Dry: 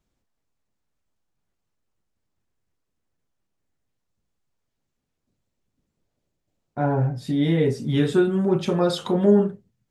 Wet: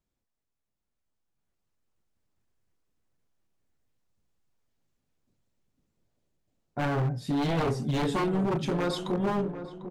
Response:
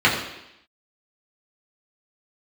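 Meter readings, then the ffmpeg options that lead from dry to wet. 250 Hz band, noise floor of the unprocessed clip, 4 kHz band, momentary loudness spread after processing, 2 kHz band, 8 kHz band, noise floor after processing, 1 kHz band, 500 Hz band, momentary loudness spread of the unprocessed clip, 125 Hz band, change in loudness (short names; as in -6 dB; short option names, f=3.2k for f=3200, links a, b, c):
-7.5 dB, -79 dBFS, -4.5 dB, 6 LU, -2.0 dB, n/a, -84 dBFS, -1.0 dB, -9.0 dB, 6 LU, -6.0 dB, -7.0 dB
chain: -filter_complex "[0:a]dynaudnorm=f=230:g=13:m=8dB,aeval=exprs='0.211*(abs(mod(val(0)/0.211+3,4)-2)-1)':c=same,asplit=2[a][b];[b]adelay=747,lowpass=f=970:p=1,volume=-9.5dB,asplit=2[c][d];[d]adelay=747,lowpass=f=970:p=1,volume=0.49,asplit=2[e][f];[f]adelay=747,lowpass=f=970:p=1,volume=0.49,asplit=2[g][h];[h]adelay=747,lowpass=f=970:p=1,volume=0.49,asplit=2[i][j];[j]adelay=747,lowpass=f=970:p=1,volume=0.49[k];[a][c][e][g][i][k]amix=inputs=6:normalize=0,volume=-8.5dB"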